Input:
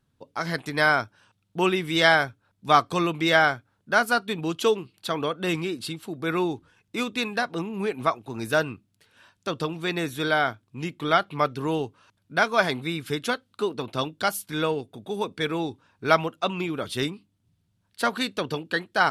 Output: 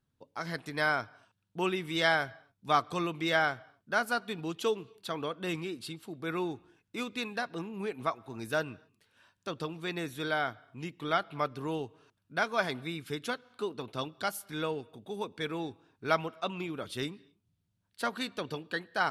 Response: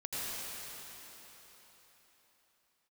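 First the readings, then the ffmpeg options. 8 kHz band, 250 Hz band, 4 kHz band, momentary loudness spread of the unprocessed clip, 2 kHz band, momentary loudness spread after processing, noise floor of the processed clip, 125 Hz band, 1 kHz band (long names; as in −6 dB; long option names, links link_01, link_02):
−8.5 dB, −8.5 dB, −8.5 dB, 13 LU, −8.5 dB, 13 LU, −79 dBFS, −8.5 dB, −8.5 dB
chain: -filter_complex "[0:a]asplit=2[link_01][link_02];[1:a]atrim=start_sample=2205,afade=type=out:start_time=0.32:duration=0.01,atrim=end_sample=14553,lowpass=5100[link_03];[link_02][link_03]afir=irnorm=-1:irlink=0,volume=-26.5dB[link_04];[link_01][link_04]amix=inputs=2:normalize=0,volume=-8.5dB"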